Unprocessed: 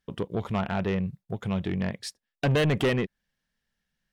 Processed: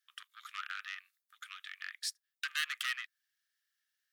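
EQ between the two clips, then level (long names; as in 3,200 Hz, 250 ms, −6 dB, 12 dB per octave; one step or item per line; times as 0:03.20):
Chebyshev high-pass with heavy ripple 1,200 Hz, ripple 3 dB
high-shelf EQ 9,100 Hz +11.5 dB
−2.5 dB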